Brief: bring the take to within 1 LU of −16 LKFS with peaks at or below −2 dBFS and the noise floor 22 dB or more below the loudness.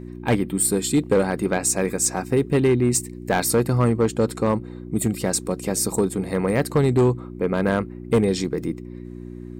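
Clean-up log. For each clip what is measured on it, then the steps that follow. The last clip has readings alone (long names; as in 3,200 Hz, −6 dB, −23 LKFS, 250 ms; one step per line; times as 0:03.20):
share of clipped samples 1.4%; peaks flattened at −12.0 dBFS; mains hum 60 Hz; hum harmonics up to 360 Hz; level of the hum −35 dBFS; integrated loudness −22.0 LKFS; sample peak −12.0 dBFS; target loudness −16.0 LKFS
→ clipped peaks rebuilt −12 dBFS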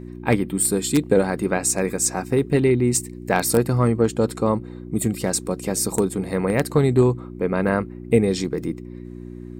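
share of clipped samples 0.0%; mains hum 60 Hz; hum harmonics up to 360 Hz; level of the hum −34 dBFS
→ hum removal 60 Hz, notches 6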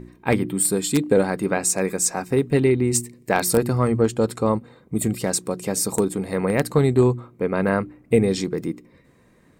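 mains hum none found; integrated loudness −21.5 LKFS; sample peak −2.5 dBFS; target loudness −16.0 LKFS
→ level +5.5 dB
brickwall limiter −2 dBFS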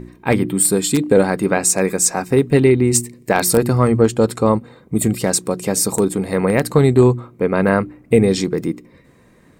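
integrated loudness −16.5 LKFS; sample peak −2.0 dBFS; background noise floor −50 dBFS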